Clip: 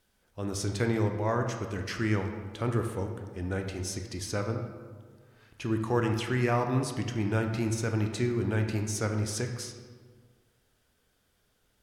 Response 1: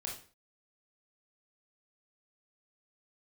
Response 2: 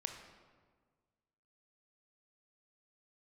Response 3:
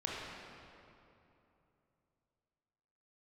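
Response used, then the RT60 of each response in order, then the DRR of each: 2; 0.40 s, 1.6 s, 2.9 s; -2.0 dB, 4.0 dB, -5.0 dB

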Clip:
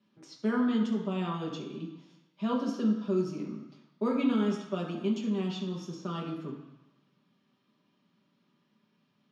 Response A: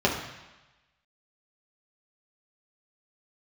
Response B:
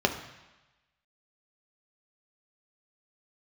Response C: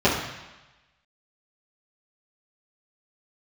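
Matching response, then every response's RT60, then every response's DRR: A; 1.1 s, 1.1 s, 1.1 s; -3.5 dB, 4.0 dB, -10.5 dB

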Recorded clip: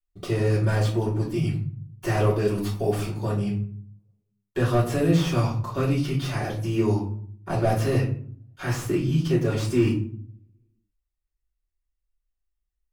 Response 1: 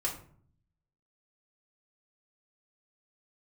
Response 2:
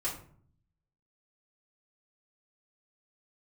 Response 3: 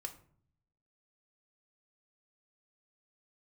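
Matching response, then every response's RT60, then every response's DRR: 2; 0.55 s, 0.55 s, 0.55 s; -2.5 dB, -6.5 dB, 5.0 dB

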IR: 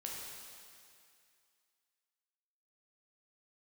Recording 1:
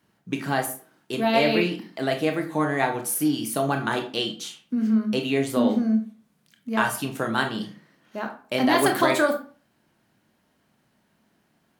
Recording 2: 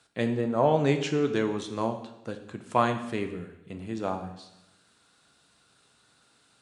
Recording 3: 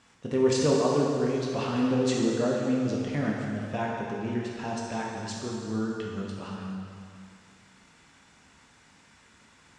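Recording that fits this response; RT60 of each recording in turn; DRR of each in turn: 3; 0.40 s, 0.90 s, 2.3 s; 4.0 dB, 6.0 dB, -3.0 dB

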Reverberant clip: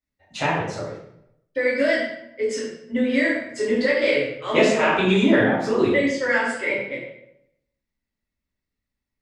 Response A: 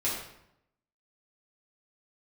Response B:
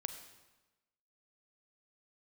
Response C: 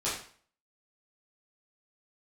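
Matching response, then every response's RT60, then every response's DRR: A; 0.80 s, 1.1 s, 0.45 s; -8.5 dB, 8.0 dB, -10.0 dB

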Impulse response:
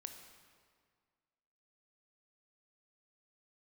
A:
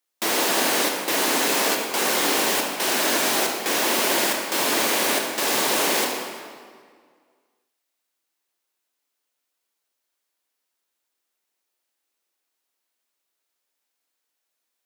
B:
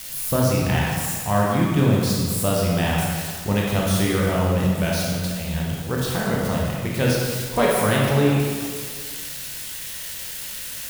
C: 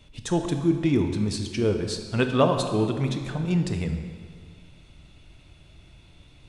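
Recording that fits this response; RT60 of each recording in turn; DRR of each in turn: C; 1.9 s, 1.9 s, 1.9 s; 1.5 dB, -4.0 dB, 5.5 dB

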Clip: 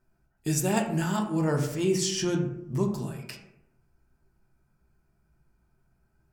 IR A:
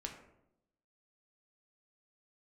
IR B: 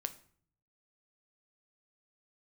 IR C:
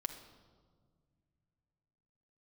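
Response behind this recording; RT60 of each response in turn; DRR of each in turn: A; 0.80 s, 0.55 s, 1.8 s; 1.0 dB, 8.0 dB, 4.5 dB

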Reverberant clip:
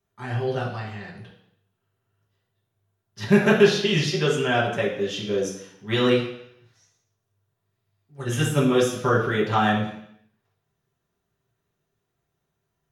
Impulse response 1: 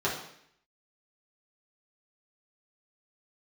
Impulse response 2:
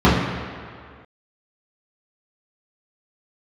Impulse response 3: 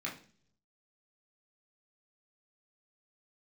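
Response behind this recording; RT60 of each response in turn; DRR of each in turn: 1; 0.70 s, 2.1 s, 0.50 s; -7.0 dB, -10.0 dB, -3.5 dB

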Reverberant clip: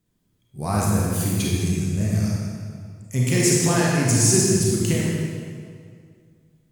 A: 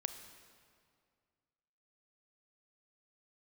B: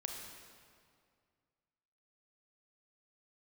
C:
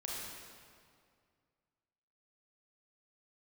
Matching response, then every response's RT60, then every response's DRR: C; 2.1 s, 2.2 s, 2.2 s; 8.5 dB, 1.5 dB, -4.5 dB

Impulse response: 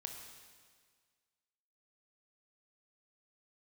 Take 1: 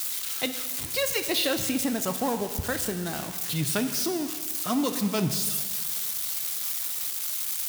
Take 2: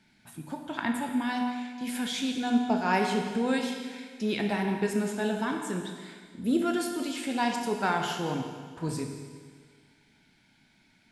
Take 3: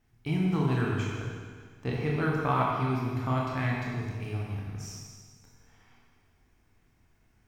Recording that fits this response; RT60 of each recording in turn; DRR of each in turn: 2; 1.7 s, 1.7 s, 1.7 s; 8.0 dB, 2.5 dB, -3.5 dB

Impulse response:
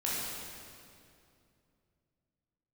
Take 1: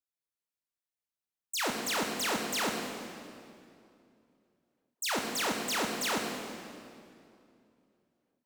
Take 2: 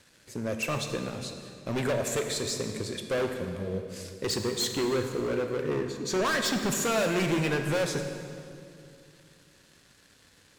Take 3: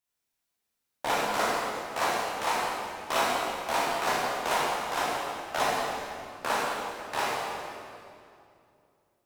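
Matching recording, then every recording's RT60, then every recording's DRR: 3; 2.6 s, 2.6 s, 2.5 s; 1.0 dB, 5.0 dB, -7.0 dB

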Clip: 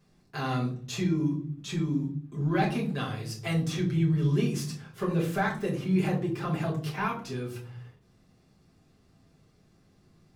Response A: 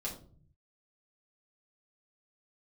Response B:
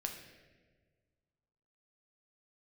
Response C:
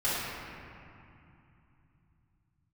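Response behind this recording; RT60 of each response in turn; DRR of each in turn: A; 0.45 s, 1.5 s, 2.7 s; -4.5 dB, 2.5 dB, -14.5 dB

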